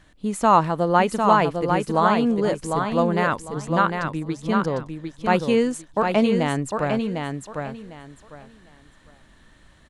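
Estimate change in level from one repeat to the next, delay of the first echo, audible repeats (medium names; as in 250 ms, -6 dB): -13.0 dB, 752 ms, 3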